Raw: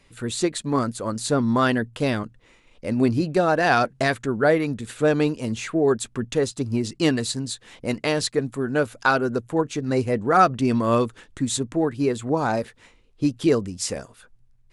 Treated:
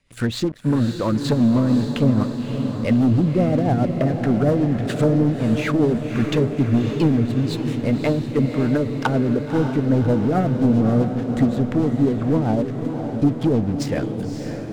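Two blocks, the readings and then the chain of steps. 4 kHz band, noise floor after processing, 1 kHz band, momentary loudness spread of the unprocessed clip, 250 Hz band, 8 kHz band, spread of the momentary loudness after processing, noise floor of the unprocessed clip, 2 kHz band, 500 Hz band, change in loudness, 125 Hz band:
-3.5 dB, -30 dBFS, -5.0 dB, 9 LU, +6.0 dB, no reading, 6 LU, -57 dBFS, -6.0 dB, 0.0 dB, +3.0 dB, +9.0 dB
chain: low-pass that closes with the level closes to 370 Hz, closed at -18 dBFS; peaking EQ 390 Hz -7 dB 0.67 oct; waveshaping leveller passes 3; rotary cabinet horn 7.5 Hz; on a send: echo that smears into a reverb 572 ms, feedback 63%, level -7 dB

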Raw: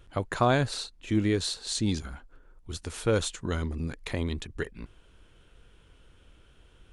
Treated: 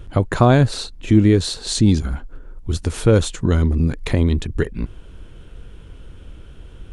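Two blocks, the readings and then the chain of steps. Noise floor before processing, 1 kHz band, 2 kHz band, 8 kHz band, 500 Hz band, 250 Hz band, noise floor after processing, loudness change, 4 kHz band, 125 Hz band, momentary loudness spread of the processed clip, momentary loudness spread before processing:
-58 dBFS, +7.0 dB, +6.0 dB, +7.0 dB, +10.0 dB, +12.5 dB, -40 dBFS, +11.5 dB, +6.5 dB, +14.5 dB, 15 LU, 15 LU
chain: bass shelf 490 Hz +10.5 dB; in parallel at 0 dB: compression, threshold -27 dBFS, peak gain reduction 14.5 dB; on the sum: trim +2.5 dB

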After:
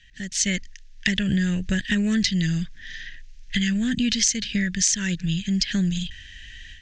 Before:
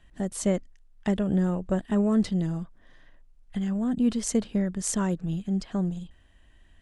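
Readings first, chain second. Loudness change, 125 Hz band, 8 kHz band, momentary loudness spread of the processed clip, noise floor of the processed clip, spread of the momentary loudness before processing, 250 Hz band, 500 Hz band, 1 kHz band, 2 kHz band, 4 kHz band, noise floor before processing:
+4.0 dB, +3.5 dB, +11.0 dB, 16 LU, -45 dBFS, 9 LU, +2.0 dB, -8.5 dB, no reading, +16.5 dB, +18.5 dB, -57 dBFS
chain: level rider gain up to 13 dB; FFT filter 130 Hz 0 dB, 790 Hz -22 dB, 1.2 kHz -18 dB, 1.7 kHz +11 dB, 6.4 kHz +15 dB, 10 kHz -14 dB; compression 6:1, threshold -19 dBFS, peak gain reduction 12 dB

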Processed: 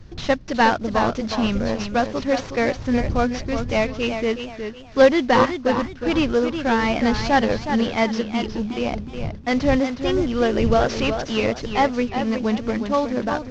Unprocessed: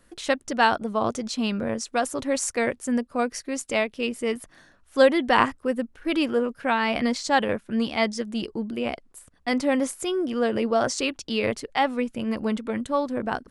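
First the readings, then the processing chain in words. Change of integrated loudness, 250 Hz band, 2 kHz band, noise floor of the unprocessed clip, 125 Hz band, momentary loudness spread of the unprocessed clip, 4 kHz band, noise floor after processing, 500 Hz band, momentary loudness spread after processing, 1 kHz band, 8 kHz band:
+4.0 dB, +5.0 dB, +2.5 dB, -59 dBFS, +12.0 dB, 8 LU, +2.5 dB, -37 dBFS, +4.5 dB, 7 LU, +3.5 dB, -5.5 dB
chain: CVSD coder 32 kbps; wind noise 110 Hz -37 dBFS; modulated delay 366 ms, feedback 30%, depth 92 cents, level -8 dB; trim +4 dB

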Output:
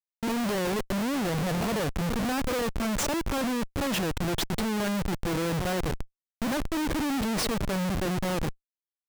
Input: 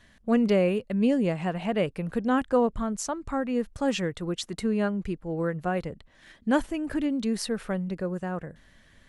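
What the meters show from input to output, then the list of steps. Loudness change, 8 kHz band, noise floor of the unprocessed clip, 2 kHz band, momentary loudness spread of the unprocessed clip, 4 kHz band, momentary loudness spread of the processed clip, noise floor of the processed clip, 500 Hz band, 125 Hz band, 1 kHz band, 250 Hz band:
-1.0 dB, +5.5 dB, -58 dBFS, +2.5 dB, 9 LU, +5.5 dB, 3 LU, under -85 dBFS, -3.5 dB, +2.0 dB, +0.5 dB, -2.0 dB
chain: pre-echo 64 ms -15 dB; Schmitt trigger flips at -36 dBFS

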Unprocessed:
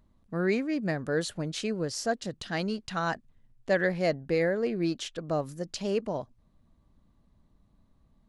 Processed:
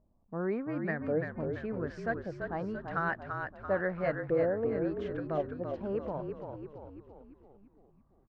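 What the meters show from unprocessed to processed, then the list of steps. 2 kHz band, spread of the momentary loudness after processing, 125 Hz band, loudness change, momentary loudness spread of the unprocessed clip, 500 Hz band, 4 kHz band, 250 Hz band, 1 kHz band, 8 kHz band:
-3.5 dB, 12 LU, -3.5 dB, -4.0 dB, 9 LU, -2.5 dB, under -20 dB, -4.5 dB, -2.0 dB, under -30 dB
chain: LFO low-pass saw up 0.93 Hz 630–2100 Hz; frequency-shifting echo 338 ms, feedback 54%, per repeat -39 Hz, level -5.5 dB; trim -6.5 dB

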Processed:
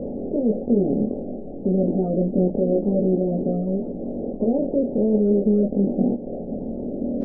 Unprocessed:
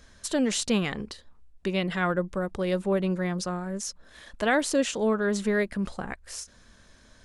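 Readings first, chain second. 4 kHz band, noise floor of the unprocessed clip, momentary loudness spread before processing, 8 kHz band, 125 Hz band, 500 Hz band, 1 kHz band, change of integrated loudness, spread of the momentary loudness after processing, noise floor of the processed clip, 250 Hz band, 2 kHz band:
under -40 dB, -57 dBFS, 13 LU, under -40 dB, +7.5 dB, +6.5 dB, -5.5 dB, +5.5 dB, 10 LU, -33 dBFS, +8.5 dB, under -40 dB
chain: spectral levelling over time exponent 0.2; steep low-pass 570 Hz 36 dB/octave; spectral noise reduction 7 dB; dynamic bell 240 Hz, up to +6 dB, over -41 dBFS, Q 4.8; chorus voices 4, 0.44 Hz, delay 23 ms, depth 1.9 ms; trim +5.5 dB; Vorbis 16 kbps 16 kHz

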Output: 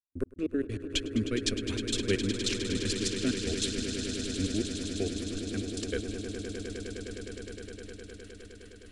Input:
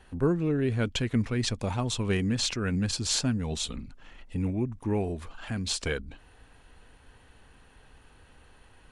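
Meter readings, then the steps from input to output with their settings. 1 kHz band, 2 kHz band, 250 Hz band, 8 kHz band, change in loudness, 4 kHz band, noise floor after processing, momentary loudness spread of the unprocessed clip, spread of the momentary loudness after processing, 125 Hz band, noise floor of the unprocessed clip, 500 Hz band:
-11.5 dB, -1.5 dB, -1.5 dB, -1.5 dB, -3.5 dB, -0.5 dB, -50 dBFS, 9 LU, 15 LU, -7.0 dB, -57 dBFS, -1.0 dB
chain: trance gate "..x..x.x.x" 195 bpm -60 dB; static phaser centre 360 Hz, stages 4; echo with a slow build-up 103 ms, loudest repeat 8, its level -11 dB; trim +2 dB

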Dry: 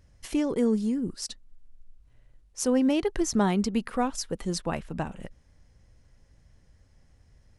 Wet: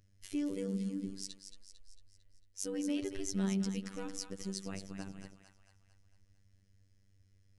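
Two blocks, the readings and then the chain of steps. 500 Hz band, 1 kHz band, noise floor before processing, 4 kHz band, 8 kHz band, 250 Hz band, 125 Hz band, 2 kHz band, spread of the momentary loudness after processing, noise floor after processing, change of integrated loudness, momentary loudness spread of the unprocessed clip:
-13.5 dB, -21.0 dB, -61 dBFS, -8.5 dB, -8.0 dB, -10.5 dB, -7.0 dB, -12.0 dB, 16 LU, -68 dBFS, -10.5 dB, 13 LU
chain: peaking EQ 850 Hz -13.5 dB 1.4 oct; two-band feedback delay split 720 Hz, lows 81 ms, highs 225 ms, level -8.5 dB; robot voice 97.1 Hz; trim -6.5 dB

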